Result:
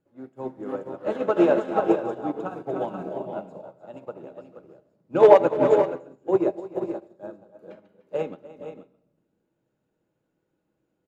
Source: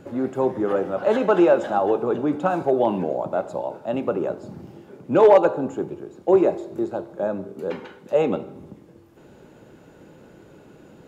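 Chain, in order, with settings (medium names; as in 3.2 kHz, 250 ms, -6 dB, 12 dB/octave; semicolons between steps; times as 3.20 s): multi-tap echo 299/315/442/480/614 ms -7/-18/-12.5/-5/-16 dB; reverberation RT60 1.3 s, pre-delay 6 ms, DRR 8.5 dB; upward expansion 2.5:1, over -31 dBFS; trim +1.5 dB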